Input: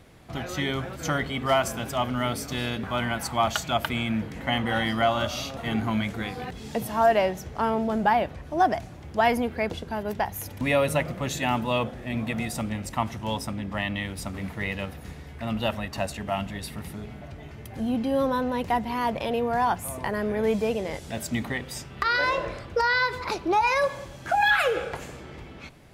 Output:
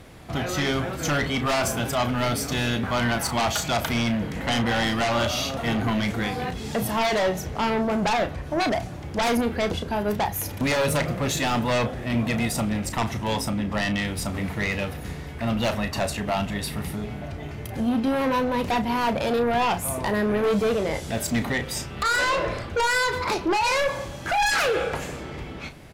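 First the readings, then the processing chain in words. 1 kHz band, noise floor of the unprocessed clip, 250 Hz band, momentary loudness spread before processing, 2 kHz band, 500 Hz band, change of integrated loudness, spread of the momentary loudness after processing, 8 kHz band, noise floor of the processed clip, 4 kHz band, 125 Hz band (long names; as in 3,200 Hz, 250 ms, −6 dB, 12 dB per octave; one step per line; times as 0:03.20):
0.0 dB, −43 dBFS, +3.5 dB, 13 LU, +1.5 dB, +1.5 dB, +2.0 dB, 8 LU, +7.0 dB, −36 dBFS, +4.0 dB, +4.0 dB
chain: in parallel at −8.5 dB: sine wavefolder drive 14 dB, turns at −9.5 dBFS
on the sum: double-tracking delay 34 ms −10 dB
level −5.5 dB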